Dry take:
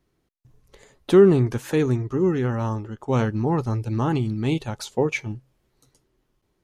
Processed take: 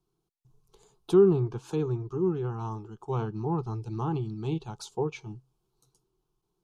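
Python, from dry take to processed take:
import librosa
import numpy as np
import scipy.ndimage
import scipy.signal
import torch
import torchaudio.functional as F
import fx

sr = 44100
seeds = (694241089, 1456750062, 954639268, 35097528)

y = fx.fixed_phaser(x, sr, hz=380.0, stages=8)
y = fx.env_lowpass_down(y, sr, base_hz=3000.0, full_db=-20.0)
y = y * 10.0 ** (-5.5 / 20.0)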